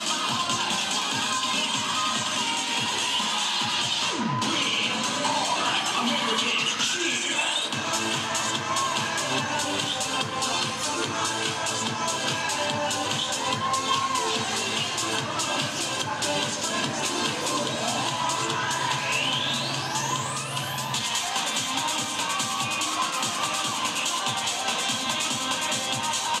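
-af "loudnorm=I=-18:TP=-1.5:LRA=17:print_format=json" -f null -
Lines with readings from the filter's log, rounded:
"input_i" : "-24.8",
"input_tp" : "-10.6",
"input_lra" : "2.0",
"input_thresh" : "-34.8",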